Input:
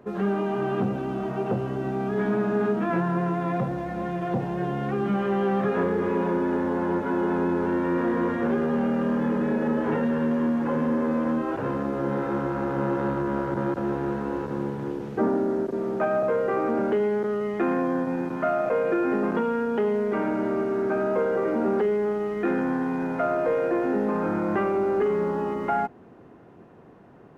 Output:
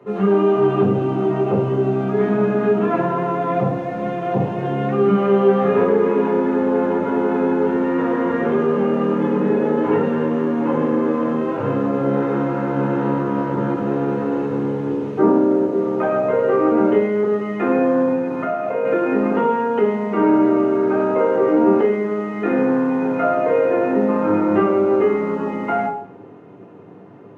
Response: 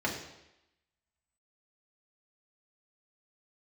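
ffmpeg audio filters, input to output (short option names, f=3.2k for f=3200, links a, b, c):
-filter_complex "[0:a]asettb=1/sr,asplit=3[a][b][c];[a]atrim=end=18.114[d];[b]atrim=start=18.11:end=18.85,asetpts=PTS-STARTPTS,afade=t=in:d=0.004:c=qsin,afade=t=out:st=0.736:d=0.004:c=qsin,acompressor=threshold=-26dB:ratio=6[e];[c]atrim=start=18.846[f];[d][e]acrossfade=d=0.004:c1=hsin:c2=qsin[g];[g][f]acrossfade=d=0.004:c1=qsin:c2=hsin[h];[1:a]atrim=start_sample=2205,asetrate=61740,aresample=44100[i];[h][i]afir=irnorm=-1:irlink=0"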